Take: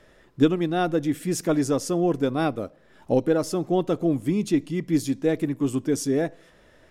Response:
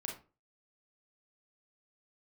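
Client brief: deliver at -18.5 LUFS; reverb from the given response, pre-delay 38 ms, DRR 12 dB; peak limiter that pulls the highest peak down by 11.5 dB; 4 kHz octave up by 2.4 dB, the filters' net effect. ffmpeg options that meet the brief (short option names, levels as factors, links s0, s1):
-filter_complex "[0:a]equalizer=f=4000:t=o:g=3,alimiter=limit=0.126:level=0:latency=1,asplit=2[s0][s1];[1:a]atrim=start_sample=2205,adelay=38[s2];[s1][s2]afir=irnorm=-1:irlink=0,volume=0.266[s3];[s0][s3]amix=inputs=2:normalize=0,volume=2.82"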